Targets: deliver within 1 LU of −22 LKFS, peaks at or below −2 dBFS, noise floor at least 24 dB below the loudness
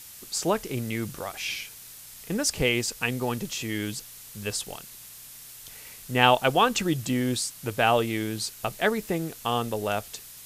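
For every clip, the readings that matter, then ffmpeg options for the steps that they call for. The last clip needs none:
background noise floor −46 dBFS; target noise floor −51 dBFS; integrated loudness −27.0 LKFS; sample peak −3.0 dBFS; target loudness −22.0 LKFS
→ -af "afftdn=noise_reduction=6:noise_floor=-46"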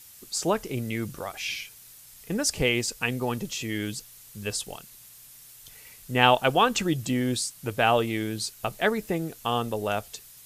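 background noise floor −50 dBFS; target noise floor −51 dBFS
→ -af "afftdn=noise_reduction=6:noise_floor=-50"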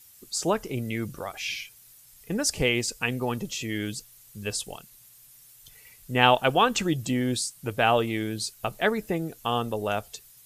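background noise floor −54 dBFS; integrated loudness −27.0 LKFS; sample peak −3.0 dBFS; target loudness −22.0 LKFS
→ -af "volume=5dB,alimiter=limit=-2dB:level=0:latency=1"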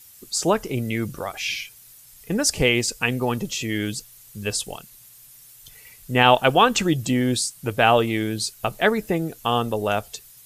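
integrated loudness −22.0 LKFS; sample peak −2.0 dBFS; background noise floor −49 dBFS

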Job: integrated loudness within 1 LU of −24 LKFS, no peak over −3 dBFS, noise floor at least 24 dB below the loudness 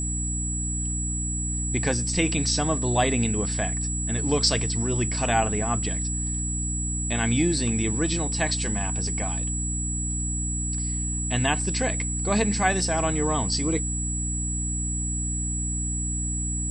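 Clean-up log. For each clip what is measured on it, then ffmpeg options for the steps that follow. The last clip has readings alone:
mains hum 60 Hz; hum harmonics up to 300 Hz; level of the hum −27 dBFS; interfering tone 7,800 Hz; level of the tone −29 dBFS; integrated loudness −25.0 LKFS; sample peak −8.0 dBFS; target loudness −24.0 LKFS
→ -af "bandreject=frequency=60:width_type=h:width=4,bandreject=frequency=120:width_type=h:width=4,bandreject=frequency=180:width_type=h:width=4,bandreject=frequency=240:width_type=h:width=4,bandreject=frequency=300:width_type=h:width=4"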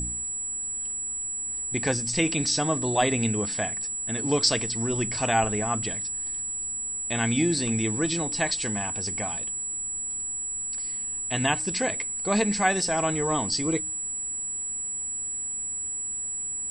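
mains hum none found; interfering tone 7,800 Hz; level of the tone −29 dBFS
→ -af "bandreject=frequency=7800:width=30"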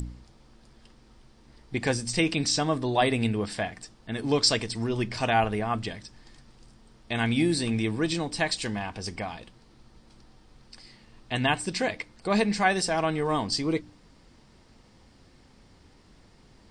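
interfering tone none found; integrated loudness −27.0 LKFS; sample peak −9.0 dBFS; target loudness −24.0 LKFS
→ -af "volume=3dB"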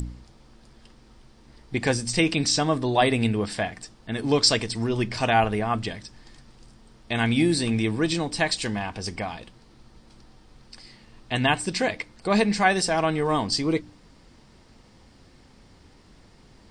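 integrated loudness −24.0 LKFS; sample peak −6.0 dBFS; background noise floor −54 dBFS

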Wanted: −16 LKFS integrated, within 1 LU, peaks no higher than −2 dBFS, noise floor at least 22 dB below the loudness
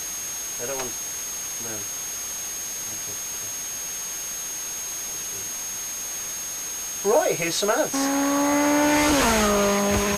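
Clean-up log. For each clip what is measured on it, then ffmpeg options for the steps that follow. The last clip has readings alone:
interfering tone 6,500 Hz; level of the tone −30 dBFS; background noise floor −32 dBFS; target noise floor −46 dBFS; integrated loudness −24.0 LKFS; sample peak −8.5 dBFS; target loudness −16.0 LKFS
→ -af "bandreject=frequency=6500:width=30"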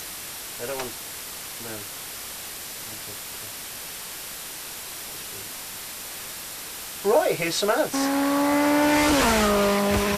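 interfering tone none found; background noise floor −37 dBFS; target noise floor −48 dBFS
→ -af "afftdn=noise_reduction=11:noise_floor=-37"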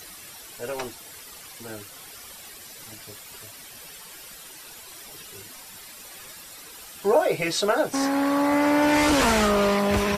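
background noise floor −44 dBFS; integrated loudness −22.0 LKFS; sample peak −9.5 dBFS; target loudness −16.0 LKFS
→ -af "volume=6dB"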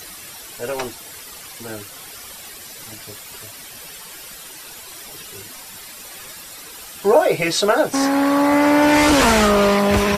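integrated loudness −16.0 LKFS; sample peak −3.5 dBFS; background noise floor −38 dBFS

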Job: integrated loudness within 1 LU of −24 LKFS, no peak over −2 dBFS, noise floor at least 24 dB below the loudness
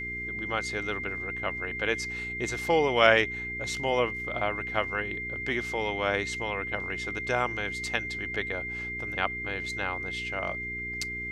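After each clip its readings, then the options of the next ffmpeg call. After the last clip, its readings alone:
mains hum 60 Hz; hum harmonics up to 420 Hz; level of the hum −40 dBFS; interfering tone 2,100 Hz; level of the tone −33 dBFS; integrated loudness −29.0 LKFS; sample peak −4.0 dBFS; target loudness −24.0 LKFS
→ -af "bandreject=frequency=60:width_type=h:width=4,bandreject=frequency=120:width_type=h:width=4,bandreject=frequency=180:width_type=h:width=4,bandreject=frequency=240:width_type=h:width=4,bandreject=frequency=300:width_type=h:width=4,bandreject=frequency=360:width_type=h:width=4,bandreject=frequency=420:width_type=h:width=4"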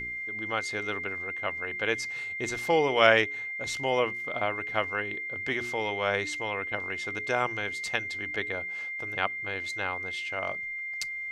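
mains hum none found; interfering tone 2,100 Hz; level of the tone −33 dBFS
→ -af "bandreject=frequency=2100:width=30"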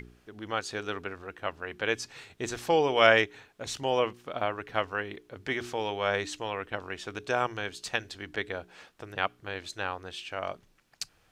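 interfering tone none found; integrated loudness −31.0 LKFS; sample peak −4.5 dBFS; target loudness −24.0 LKFS
→ -af "volume=7dB,alimiter=limit=-2dB:level=0:latency=1"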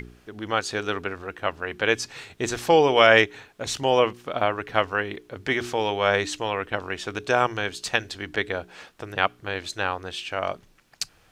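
integrated loudness −24.5 LKFS; sample peak −2.0 dBFS; background noise floor −58 dBFS

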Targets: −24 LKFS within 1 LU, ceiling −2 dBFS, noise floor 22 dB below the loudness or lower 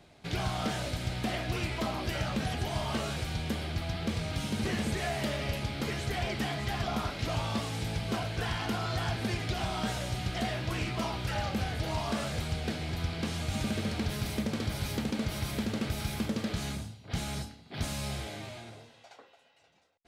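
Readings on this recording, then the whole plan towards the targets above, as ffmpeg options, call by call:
integrated loudness −33.5 LKFS; sample peak −21.5 dBFS; target loudness −24.0 LKFS
→ -af "volume=9.5dB"

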